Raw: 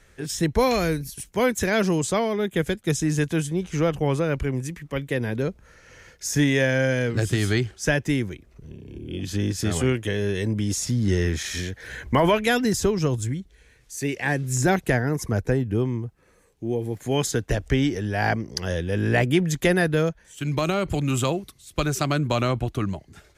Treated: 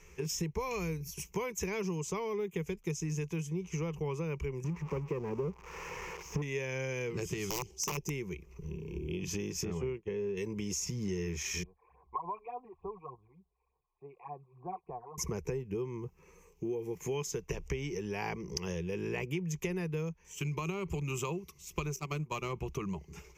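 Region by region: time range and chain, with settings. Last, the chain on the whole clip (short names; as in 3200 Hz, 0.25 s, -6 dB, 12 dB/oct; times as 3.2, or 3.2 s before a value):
4.64–6.42 switching spikes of -16 dBFS + LPF 1000 Hz + sample leveller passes 2
7.49–8.1 EQ curve 790 Hz 0 dB, 1400 Hz -18 dB, 5200 Hz +5 dB + wrapped overs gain 15.5 dB
9.65–10.37 LPF 1100 Hz 6 dB/oct + expander -26 dBFS
11.63–15.18 phaser stages 8, 3.4 Hz, lowest notch 180–3200 Hz + vocal tract filter a
21.96–22.53 gate -22 dBFS, range -18 dB + high shelf 7300 Hz +6.5 dB + sample leveller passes 1
whole clip: ripple EQ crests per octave 0.77, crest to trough 15 dB; compressor 6:1, threshold -30 dBFS; gain -3.5 dB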